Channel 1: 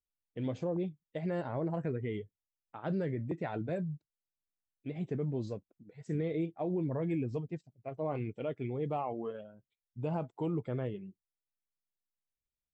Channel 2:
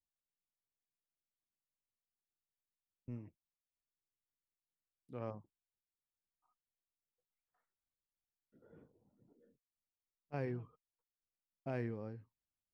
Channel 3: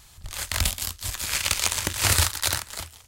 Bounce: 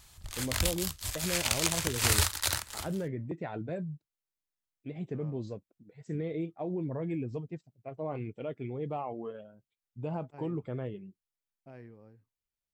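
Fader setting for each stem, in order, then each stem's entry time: -1.0, -10.0, -5.5 dB; 0.00, 0.00, 0.00 s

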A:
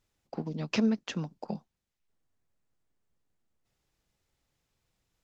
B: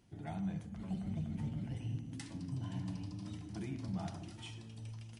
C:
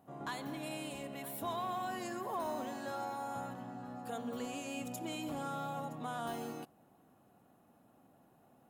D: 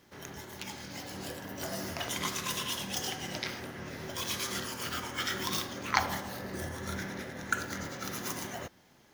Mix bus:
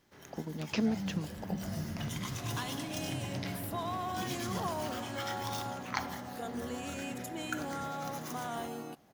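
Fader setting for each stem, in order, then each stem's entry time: -4.0, +0.5, +1.0, -8.0 dB; 0.00, 0.60, 2.30, 0.00 s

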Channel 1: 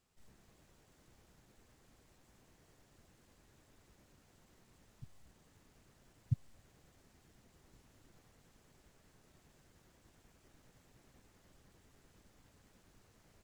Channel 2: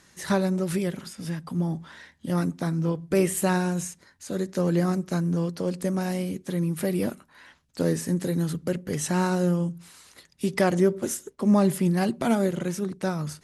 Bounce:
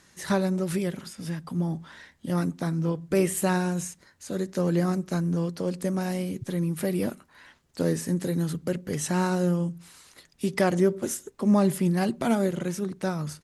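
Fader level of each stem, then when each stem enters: -6.0, -1.0 dB; 0.10, 0.00 s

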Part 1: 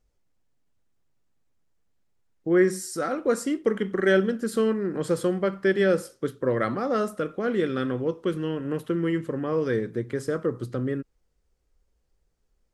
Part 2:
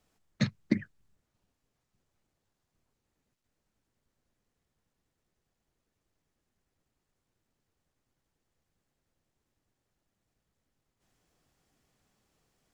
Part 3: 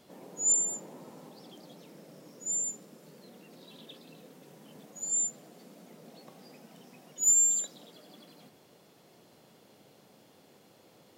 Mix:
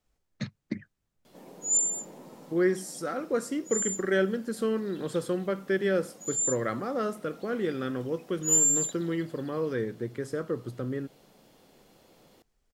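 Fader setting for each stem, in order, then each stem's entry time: -5.0, -6.5, +0.5 dB; 0.05, 0.00, 1.25 s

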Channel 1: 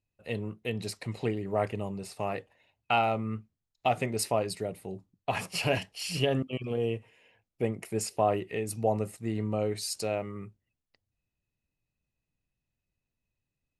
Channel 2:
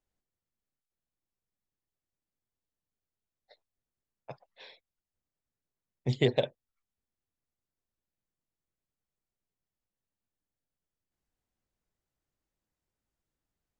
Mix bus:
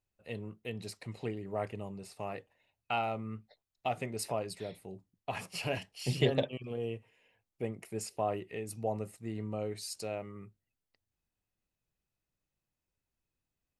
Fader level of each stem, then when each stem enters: -7.0, -3.5 dB; 0.00, 0.00 s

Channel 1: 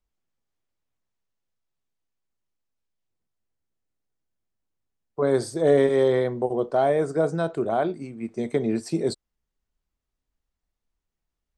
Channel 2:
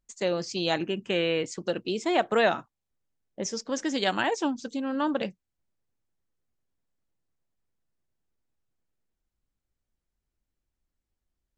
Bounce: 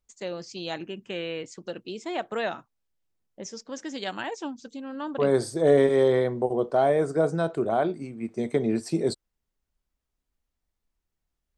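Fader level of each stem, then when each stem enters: -0.5, -6.5 dB; 0.00, 0.00 s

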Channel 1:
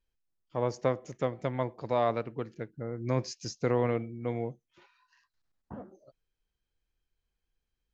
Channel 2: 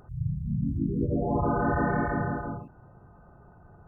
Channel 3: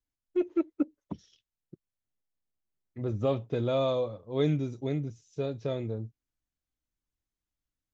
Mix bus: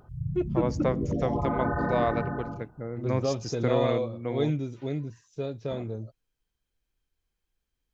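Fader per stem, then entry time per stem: +1.0, -2.5, -0.5 dB; 0.00, 0.00, 0.00 s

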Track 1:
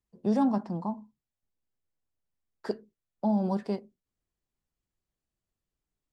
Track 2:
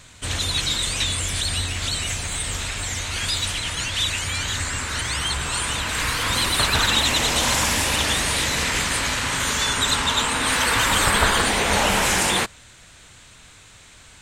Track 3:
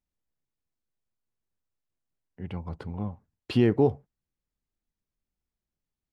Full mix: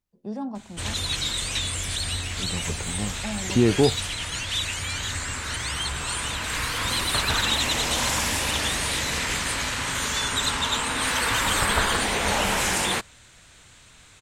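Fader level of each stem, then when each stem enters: -7.0, -4.0, +2.5 dB; 0.00, 0.55, 0.00 s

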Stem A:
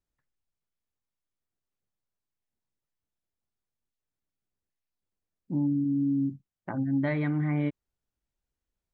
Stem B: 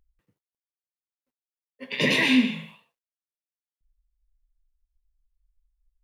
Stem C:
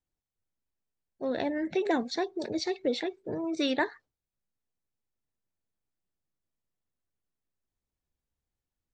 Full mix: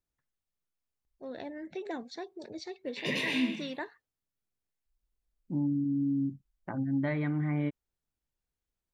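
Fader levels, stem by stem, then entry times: -3.0, -10.0, -10.5 dB; 0.00, 1.05, 0.00 s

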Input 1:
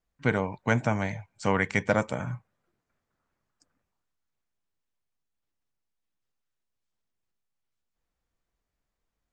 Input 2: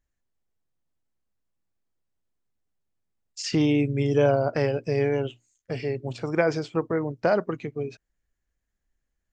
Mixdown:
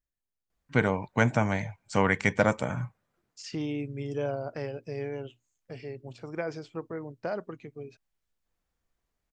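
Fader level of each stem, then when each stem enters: +1.0, -11.0 dB; 0.50, 0.00 s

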